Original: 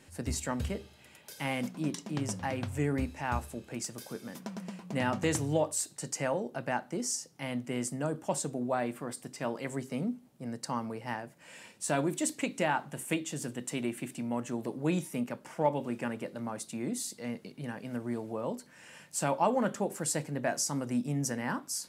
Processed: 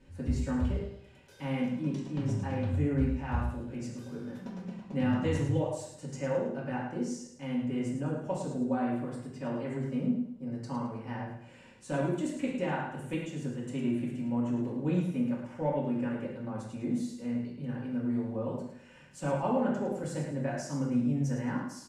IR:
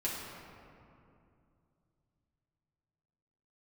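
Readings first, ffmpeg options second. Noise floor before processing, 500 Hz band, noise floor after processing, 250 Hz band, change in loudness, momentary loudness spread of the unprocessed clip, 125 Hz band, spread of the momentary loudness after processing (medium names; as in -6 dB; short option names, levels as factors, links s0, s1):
-58 dBFS, -0.5 dB, -54 dBFS, +3.5 dB, +1.0 dB, 11 LU, +4.5 dB, 10 LU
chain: -filter_complex "[0:a]aemphasis=mode=reproduction:type=bsi,bandreject=f=650:w=20,aecho=1:1:108|216|324|432:0.355|0.117|0.0386|0.0128[s0];[1:a]atrim=start_sample=2205,afade=t=out:st=0.23:d=0.01,atrim=end_sample=10584,asetrate=66150,aresample=44100[s1];[s0][s1]afir=irnorm=-1:irlink=0,volume=0.631"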